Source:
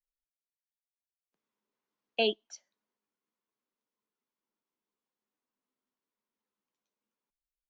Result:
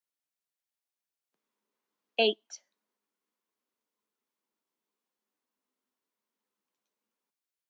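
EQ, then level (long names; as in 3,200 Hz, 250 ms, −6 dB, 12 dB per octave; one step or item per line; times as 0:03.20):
high-pass filter 190 Hz
+2.5 dB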